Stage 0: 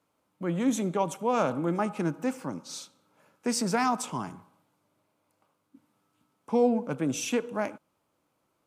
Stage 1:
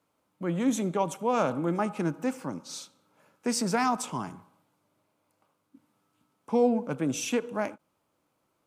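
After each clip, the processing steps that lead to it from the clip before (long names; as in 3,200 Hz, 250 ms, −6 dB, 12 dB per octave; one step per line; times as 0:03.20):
every ending faded ahead of time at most 560 dB per second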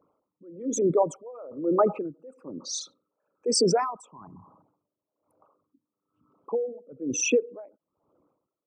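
spectral envelope exaggerated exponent 3
tremolo with a sine in dB 1.1 Hz, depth 25 dB
level +8 dB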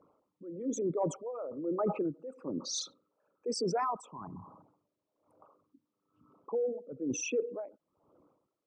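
reversed playback
downward compressor 12 to 1, threshold −31 dBFS, peak gain reduction 15 dB
reversed playback
high-frequency loss of the air 62 metres
level +2.5 dB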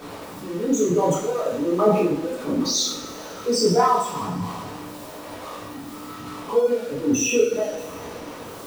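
converter with a step at zero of −43.5 dBFS
coupled-rooms reverb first 0.58 s, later 3.9 s, from −22 dB, DRR −7 dB
level +5 dB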